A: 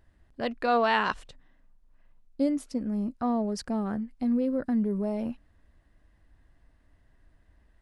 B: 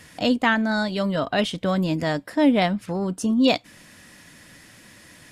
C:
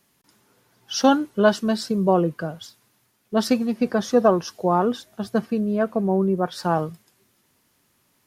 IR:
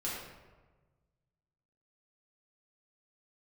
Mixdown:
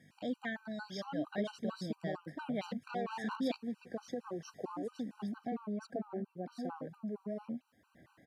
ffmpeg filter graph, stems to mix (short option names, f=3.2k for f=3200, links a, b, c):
-filter_complex "[0:a]acompressor=mode=upward:threshold=-36dB:ratio=2.5,asoftclip=type=tanh:threshold=-26.5dB,adelay=2250,volume=-2.5dB[a];[1:a]aeval=exprs='val(0)+0.0112*(sin(2*PI*50*n/s)+sin(2*PI*2*50*n/s)/2+sin(2*PI*3*50*n/s)/3+sin(2*PI*4*50*n/s)/4+sin(2*PI*5*50*n/s)/5)':c=same,volume=-16.5dB[b];[2:a]alimiter=limit=-14dB:level=0:latency=1:release=82,volume=-8.5dB[c];[a][c]amix=inputs=2:normalize=0,aphaser=in_gain=1:out_gain=1:delay=4:decay=0.31:speed=2:type=sinusoidal,acompressor=threshold=-36dB:ratio=5,volume=0dB[d];[b][d]amix=inputs=2:normalize=0,highpass=f=130:w=0.5412,highpass=f=130:w=1.3066,aemphasis=mode=reproduction:type=cd,afftfilt=real='re*gt(sin(2*PI*4.4*pts/sr)*(1-2*mod(floor(b*sr/1024/780),2)),0)':imag='im*gt(sin(2*PI*4.4*pts/sr)*(1-2*mod(floor(b*sr/1024/780),2)),0)':win_size=1024:overlap=0.75"